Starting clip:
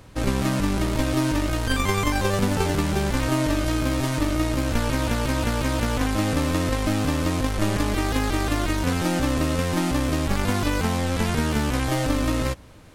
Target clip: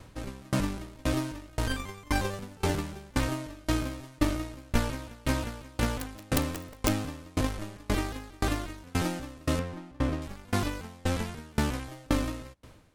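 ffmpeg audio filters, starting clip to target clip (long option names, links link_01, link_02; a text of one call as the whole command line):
ffmpeg -i in.wav -filter_complex "[0:a]asettb=1/sr,asplit=3[link_01][link_02][link_03];[link_01]atrim=end=5.944[link_04];[link_02]atrim=start=5.94:end=6.89,asetpts=PTS-STARTPTS,afade=type=in:duration=0.004:curve=qsin,afade=type=out:start_time=0.946:duration=0.004:curve=qsin,aeval=exprs='(mod(5.31*val(0)+1,2)-1)/5.31':channel_layout=same[link_05];[link_03]atrim=start=6.886[link_06];[link_04][link_05]acrossfade=duration=0.004:curve1=hsin:curve2=qsin[link_07];[link_07][link_06]acrossfade=duration=0.004:curve1=qsin:curve2=hsin,asettb=1/sr,asplit=3[link_08][link_09][link_10];[link_08]atrim=end=9.594[link_11];[link_09]atrim=start=9.59:end=10.22,asetpts=PTS-STARTPTS,afade=type=in:duration=0.004:curve=qsin,afade=type=out:start_time=0.626:duration=0.004:curve=qsin,lowpass=frequency=1900:poles=1[link_12];[link_10]atrim=start=10.216[link_13];[link_11][link_12]acrossfade=duration=0.004:curve1=hsin:curve2=qsin[link_14];[link_14][link_13]acrossfade=duration=0.004:curve1=qsin:curve2=hsin,aeval=exprs='val(0)*pow(10,-31*if(lt(mod(1.9*n/s,1),2*abs(1.9)/1000),1-mod(1.9*n/s,1)/(2*abs(1.9)/1000),(mod(1.9*n/s,1)-2*abs(1.9)/1000)/(1-2*abs(1.9)/1000))/20)':channel_layout=same" out.wav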